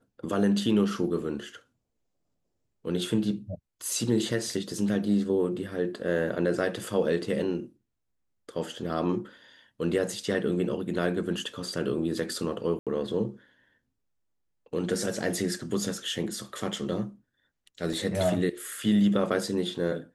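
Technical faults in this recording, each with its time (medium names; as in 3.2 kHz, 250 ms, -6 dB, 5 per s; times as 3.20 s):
12.79–12.87 s: dropout 77 ms
17.93 s: dropout 2.8 ms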